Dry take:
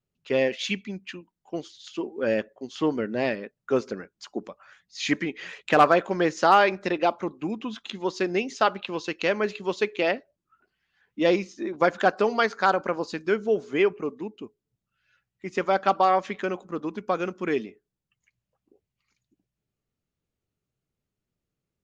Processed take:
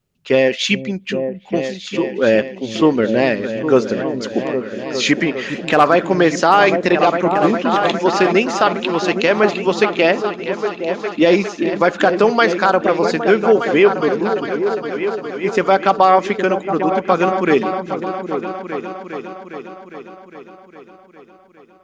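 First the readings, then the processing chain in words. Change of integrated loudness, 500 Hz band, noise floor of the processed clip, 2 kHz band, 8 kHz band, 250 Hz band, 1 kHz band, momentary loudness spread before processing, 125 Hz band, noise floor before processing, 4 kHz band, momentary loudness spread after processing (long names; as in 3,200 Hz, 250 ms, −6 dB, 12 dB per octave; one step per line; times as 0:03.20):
+9.0 dB, +11.0 dB, −45 dBFS, +9.5 dB, can't be measured, +12.0 dB, +9.0 dB, 16 LU, +12.0 dB, below −85 dBFS, +10.5 dB, 11 LU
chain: echo whose low-pass opens from repeat to repeat 407 ms, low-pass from 200 Hz, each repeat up 2 octaves, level −6 dB
boost into a limiter +12.5 dB
level −1 dB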